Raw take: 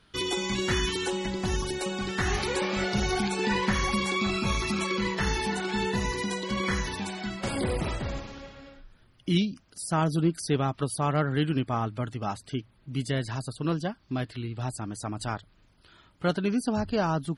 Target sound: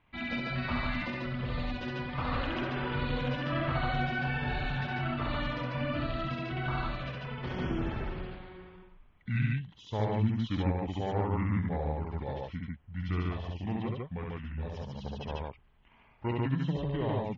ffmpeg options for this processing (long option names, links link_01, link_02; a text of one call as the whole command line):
ffmpeg -i in.wav -filter_complex "[0:a]lowpass=frequency=5700:width=0.5412,lowpass=frequency=5700:width=1.3066,asetrate=29433,aresample=44100,atempo=1.49831,asplit=2[link_01][link_02];[link_02]aecho=0:1:67.06|145.8:0.794|0.891[link_03];[link_01][link_03]amix=inputs=2:normalize=0,volume=-7.5dB" out.wav